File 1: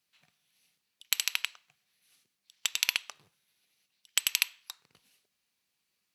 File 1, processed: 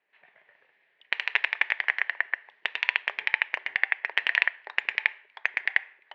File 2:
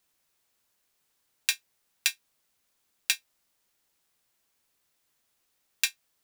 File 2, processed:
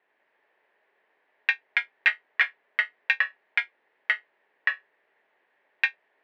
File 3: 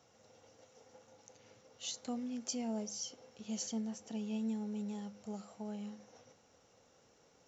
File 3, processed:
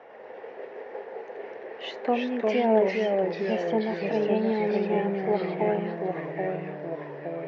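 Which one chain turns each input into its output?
ever faster or slower copies 97 ms, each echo -2 st, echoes 3; cabinet simulation 390–2300 Hz, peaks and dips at 410 Hz +8 dB, 610 Hz +5 dB, 880 Hz +4 dB, 1.3 kHz -6 dB, 1.8 kHz +9 dB; normalise loudness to -27 LUFS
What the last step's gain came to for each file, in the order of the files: +8.0 dB, +8.0 dB, +18.0 dB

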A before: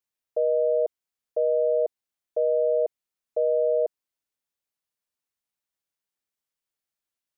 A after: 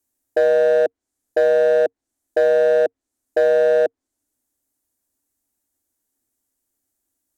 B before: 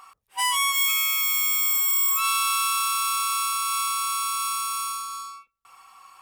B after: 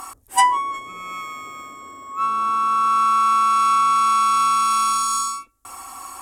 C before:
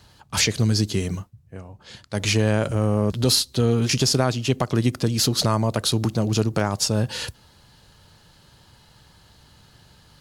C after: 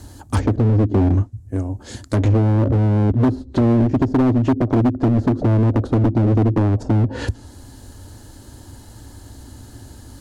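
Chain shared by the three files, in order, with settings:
low-pass that closes with the level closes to 590 Hz, closed at -18.5 dBFS; FFT filter 110 Hz 0 dB, 160 Hz -17 dB, 270 Hz +7 dB, 460 Hz -7 dB, 700 Hz -6 dB, 1.2 kHz -13 dB, 1.7 kHz -11 dB, 2.6 kHz -18 dB, 5 kHz -12 dB, 7.2 kHz -2 dB; compression 4:1, threshold -25 dBFS; hard clipper -28.5 dBFS; normalise loudness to -18 LUFS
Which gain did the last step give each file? +17.0 dB, +24.5 dB, +16.5 dB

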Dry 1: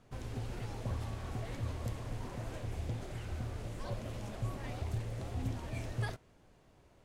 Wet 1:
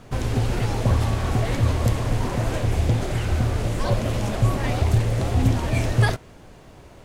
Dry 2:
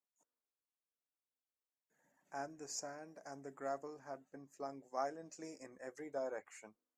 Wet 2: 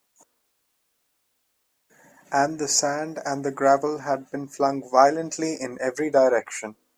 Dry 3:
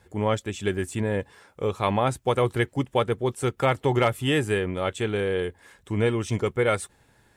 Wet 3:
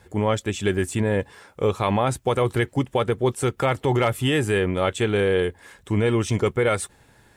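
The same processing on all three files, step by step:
peak limiter -16.5 dBFS; short-mantissa float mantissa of 8-bit; normalise loudness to -23 LUFS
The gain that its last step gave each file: +18.0 dB, +23.5 dB, +5.5 dB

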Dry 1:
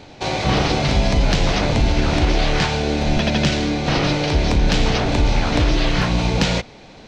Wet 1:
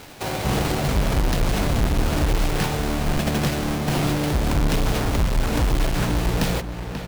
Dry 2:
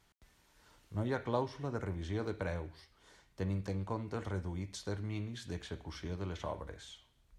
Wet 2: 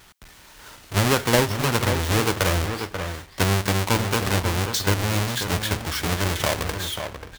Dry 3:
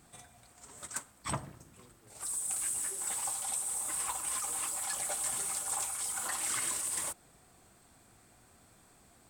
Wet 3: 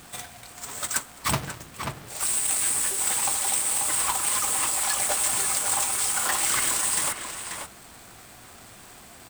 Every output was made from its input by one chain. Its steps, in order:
square wave that keeps the level; echo from a far wall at 92 m, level -8 dB; tape noise reduction on one side only encoder only; normalise loudness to -23 LUFS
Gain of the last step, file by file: -9.0 dB, +9.5 dB, +4.0 dB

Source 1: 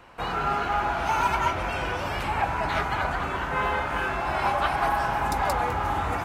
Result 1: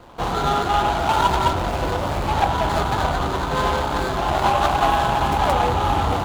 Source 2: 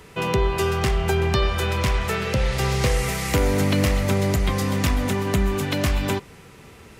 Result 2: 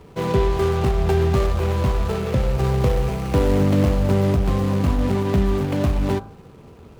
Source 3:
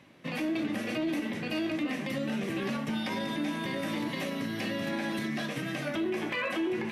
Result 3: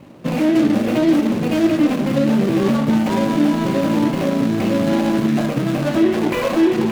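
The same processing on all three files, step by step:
median filter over 25 samples; de-hum 52.71 Hz, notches 31; peak normalisation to -6 dBFS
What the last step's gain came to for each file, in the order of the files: +9.5 dB, +3.5 dB, +17.0 dB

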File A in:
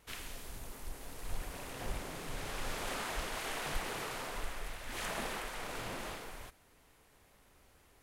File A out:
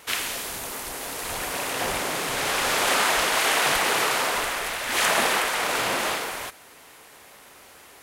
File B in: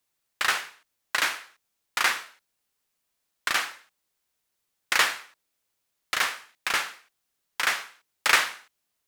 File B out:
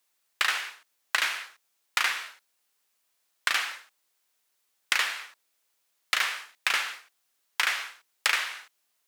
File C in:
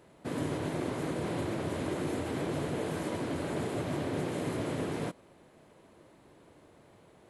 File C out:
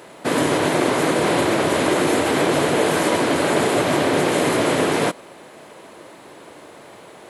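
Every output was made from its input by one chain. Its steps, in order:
dynamic bell 2.7 kHz, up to +5 dB, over -38 dBFS, Q 0.86; compression 12:1, threshold -26 dBFS; high-pass 550 Hz 6 dB/octave; peak normalisation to -6 dBFS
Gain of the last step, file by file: +19.0 dB, +4.5 dB, +20.5 dB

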